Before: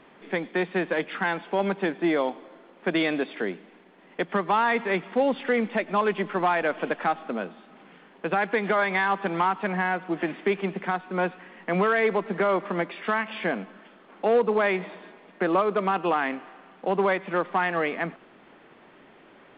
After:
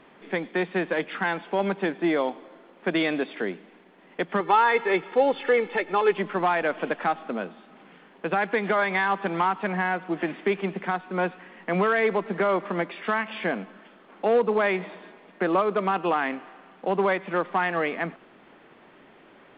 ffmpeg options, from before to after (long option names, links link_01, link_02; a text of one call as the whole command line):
ffmpeg -i in.wav -filter_complex "[0:a]asettb=1/sr,asplit=3[link_01][link_02][link_03];[link_01]atrim=end=4.404[link_04];[link_02]atrim=start=4.4:end=6.17,asetpts=PTS-STARTPTS,afade=type=in:duration=0.004:curve=qsin,afade=type=out:start_time=1.766:duration=0.004:curve=qsin,aecho=1:1:2.3:0.72,atrim=end_sample=78057[link_05];[link_03]atrim=start=6.166[link_06];[link_04][link_05]acrossfade=duration=0.004:curve1=hsin:curve2=qsin[link_07];[link_07][link_06]acrossfade=duration=0.004:curve1=qsin:curve2=hsin" out.wav